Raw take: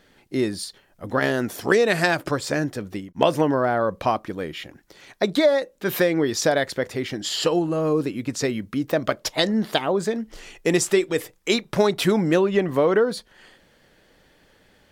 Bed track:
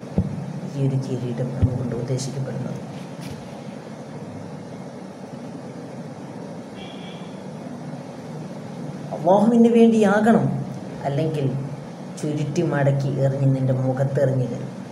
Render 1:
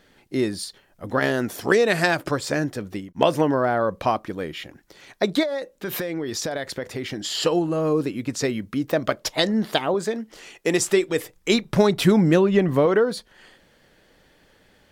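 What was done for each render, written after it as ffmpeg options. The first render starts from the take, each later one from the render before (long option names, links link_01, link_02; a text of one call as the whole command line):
ffmpeg -i in.wav -filter_complex "[0:a]asettb=1/sr,asplit=3[link_01][link_02][link_03];[link_01]atrim=end=5.434[link_04];[link_02]atrim=start=5.43:end=7.35,asetpts=PTS-STARTPTS,afade=type=in:duration=0.004:curve=qsin,afade=type=out:start_time=1.916:duration=0.004:curve=qsin,acompressor=threshold=-24dB:ratio=6:attack=3.2:release=140:knee=1:detection=peak[link_05];[link_03]atrim=start=7.346[link_06];[link_04][link_05]acrossfade=duration=0.004:curve1=hsin:curve2=qsin[link_07];[link_07][link_06]acrossfade=duration=0.004:curve1=qsin:curve2=hsin,asettb=1/sr,asplit=3[link_08][link_09][link_10];[link_08]atrim=end=9.944[link_11];[link_09]atrim=start=9.94:end=10.8,asetpts=PTS-STARTPTS,afade=type=in:duration=0.004:curve=qsin,afade=type=out:start_time=0.856:duration=0.004:curve=qsin,highpass=frequency=210:poles=1[link_12];[link_10]atrim=start=10.796[link_13];[link_11][link_12]acrossfade=duration=0.004:curve1=hsin:curve2=qsin[link_14];[link_14][link_13]acrossfade=duration=0.004:curve1=qsin:curve2=hsin,asettb=1/sr,asplit=3[link_15][link_16][link_17];[link_15]atrim=end=11.364[link_18];[link_16]atrim=start=11.36:end=12.86,asetpts=PTS-STARTPTS,afade=type=in:duration=0.004:curve=qsin,afade=type=out:start_time=1.496:duration=0.004:curve=qsin,bass=frequency=250:gain=7,treble=frequency=4000:gain=0[link_19];[link_17]atrim=start=12.856[link_20];[link_18][link_19]acrossfade=duration=0.004:curve1=hsin:curve2=qsin[link_21];[link_21][link_20]acrossfade=duration=0.004:curve1=qsin:curve2=hsin" out.wav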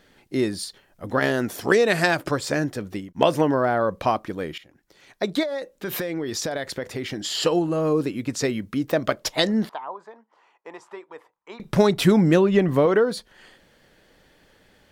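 ffmpeg -i in.wav -filter_complex "[0:a]asettb=1/sr,asplit=3[link_01][link_02][link_03];[link_01]atrim=end=9.694[link_04];[link_02]atrim=start=9.69:end=11.6,asetpts=PTS-STARTPTS,afade=type=in:duration=0.004:curve=qsin,afade=type=out:start_time=1.906:duration=0.004:curve=qsin,bandpass=frequency=970:width_type=q:width=5.1[link_05];[link_03]atrim=start=11.596[link_06];[link_04][link_05]acrossfade=duration=0.004:curve1=hsin:curve2=qsin[link_07];[link_07][link_06]acrossfade=duration=0.004:curve1=qsin:curve2=hsin,asplit=2[link_08][link_09];[link_08]atrim=end=4.58,asetpts=PTS-STARTPTS,afade=type=out:start_time=4.576:duration=0.004:curve=hsin:silence=0.158489[link_10];[link_09]atrim=start=4.58,asetpts=PTS-STARTPTS,afade=type=in:duration=1.59:curve=qsin:silence=0.158489[link_11];[link_10][link_11]concat=n=2:v=0:a=1" out.wav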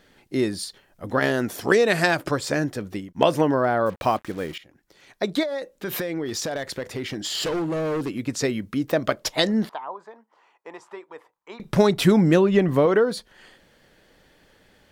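ffmpeg -i in.wav -filter_complex "[0:a]asettb=1/sr,asplit=3[link_01][link_02][link_03];[link_01]atrim=end=3.864[link_04];[link_02]atrim=start=3.86:end=4.56,asetpts=PTS-STARTPTS,afade=type=in:duration=0.004:curve=qsin,afade=type=out:start_time=0.696:duration=0.004:curve=qsin,acrusher=bits=6:mix=0:aa=0.5[link_05];[link_03]atrim=start=4.556[link_06];[link_04][link_05]acrossfade=duration=0.004:curve1=hsin:curve2=qsin[link_07];[link_07][link_06]acrossfade=duration=0.004:curve1=qsin:curve2=hsin,asettb=1/sr,asplit=3[link_08][link_09][link_10];[link_08]atrim=end=6.254[link_11];[link_09]atrim=start=6.25:end=8.18,asetpts=PTS-STARTPTS,afade=type=in:duration=0.004:curve=qsin,afade=type=out:start_time=1.926:duration=0.004:curve=qsin,asoftclip=type=hard:threshold=-23dB[link_12];[link_10]atrim=start=8.176[link_13];[link_11][link_12]acrossfade=duration=0.004:curve1=hsin:curve2=qsin[link_14];[link_14][link_13]acrossfade=duration=0.004:curve1=qsin:curve2=hsin" out.wav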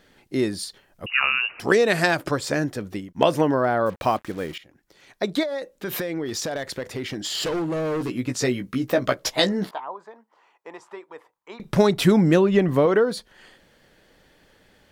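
ffmpeg -i in.wav -filter_complex "[0:a]asettb=1/sr,asplit=3[link_01][link_02][link_03];[link_01]atrim=end=1.064[link_04];[link_02]atrim=start=1.06:end=1.6,asetpts=PTS-STARTPTS,afade=type=in:duration=0.004:curve=qsin,afade=type=out:start_time=0.536:duration=0.004:curve=qsin,lowpass=frequency=2600:width_type=q:width=0.5098,lowpass=frequency=2600:width_type=q:width=0.6013,lowpass=frequency=2600:width_type=q:width=0.9,lowpass=frequency=2600:width_type=q:width=2.563,afreqshift=-3000[link_05];[link_03]atrim=start=1.596[link_06];[link_04][link_05]acrossfade=duration=0.004:curve1=hsin:curve2=qsin[link_07];[link_07][link_06]acrossfade=duration=0.004:curve1=qsin:curve2=hsin,asettb=1/sr,asplit=3[link_08][link_09][link_10];[link_08]atrim=end=7.994[link_11];[link_09]atrim=start=7.99:end=9.81,asetpts=PTS-STARTPTS,afade=type=in:duration=0.004:curve=qsin,afade=type=out:start_time=1.816:duration=0.004:curve=qsin,asplit=2[link_12][link_13];[link_13]adelay=16,volume=-5dB[link_14];[link_12][link_14]amix=inputs=2:normalize=0,atrim=end_sample=80262[link_15];[link_10]atrim=start=9.806[link_16];[link_11][link_15]acrossfade=duration=0.004:curve1=hsin:curve2=qsin[link_17];[link_17][link_16]acrossfade=duration=0.004:curve1=qsin:curve2=hsin" out.wav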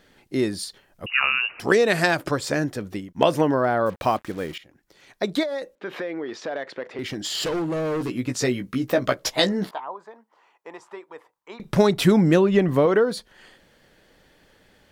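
ffmpeg -i in.wav -filter_complex "[0:a]asettb=1/sr,asplit=3[link_01][link_02][link_03];[link_01]atrim=end=5.754[link_04];[link_02]atrim=start=5.75:end=6.99,asetpts=PTS-STARTPTS,afade=type=in:duration=0.004:curve=qsin,afade=type=out:start_time=1.236:duration=0.004:curve=qsin,highpass=310,lowpass=2600[link_05];[link_03]atrim=start=6.986[link_06];[link_04][link_05]acrossfade=duration=0.004:curve1=hsin:curve2=qsin[link_07];[link_07][link_06]acrossfade=duration=0.004:curve1=qsin:curve2=hsin" out.wav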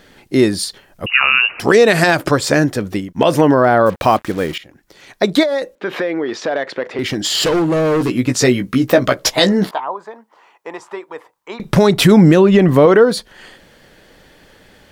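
ffmpeg -i in.wav -af "alimiter=level_in=10.5dB:limit=-1dB:release=50:level=0:latency=1" out.wav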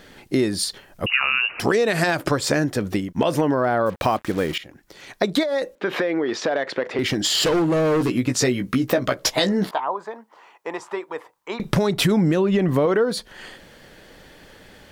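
ffmpeg -i in.wav -af "acompressor=threshold=-19dB:ratio=3" out.wav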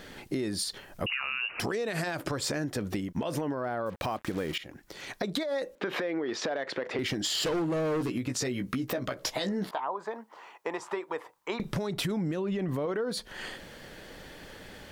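ffmpeg -i in.wav -af "alimiter=limit=-14dB:level=0:latency=1:release=51,acompressor=threshold=-30dB:ratio=4" out.wav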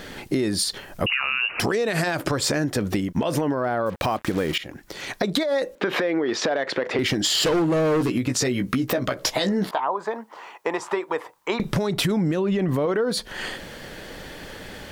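ffmpeg -i in.wav -af "volume=8.5dB" out.wav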